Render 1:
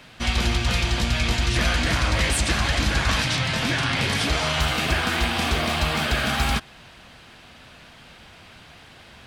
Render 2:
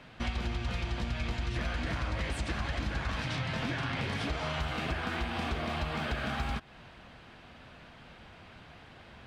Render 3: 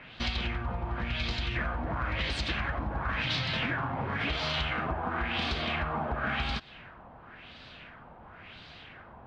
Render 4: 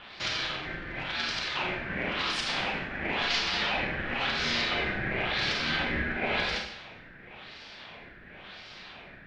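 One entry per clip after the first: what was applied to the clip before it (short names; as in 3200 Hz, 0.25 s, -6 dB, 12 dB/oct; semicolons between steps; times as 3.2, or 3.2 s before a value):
LPF 1800 Hz 6 dB/oct; compressor 4:1, threshold -28 dBFS, peak gain reduction 9.5 dB; gain -3 dB
high shelf 3500 Hz +7 dB; LFO low-pass sine 0.95 Hz 900–4400 Hz
HPF 600 Hz 12 dB/oct; ring modulator 860 Hz; Schroeder reverb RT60 0.71 s, combs from 30 ms, DRR 1 dB; gain +4.5 dB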